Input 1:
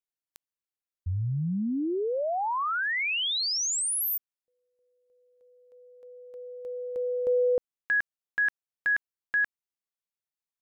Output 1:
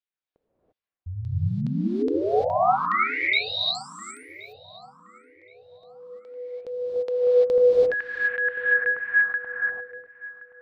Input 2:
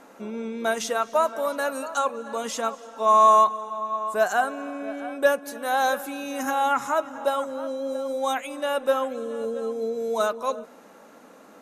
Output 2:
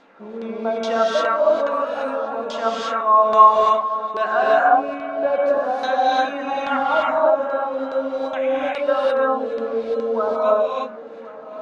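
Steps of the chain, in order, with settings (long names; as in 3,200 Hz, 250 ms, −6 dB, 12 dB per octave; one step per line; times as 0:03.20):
auto-filter low-pass saw down 2.4 Hz 360–4,300 Hz
on a send: feedback echo with a low-pass in the loop 1,073 ms, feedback 35%, low-pass 2,100 Hz, level −17 dB
on the sum: reverb whose tail is shaped and stops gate 370 ms rising, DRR −6 dB
level −4 dB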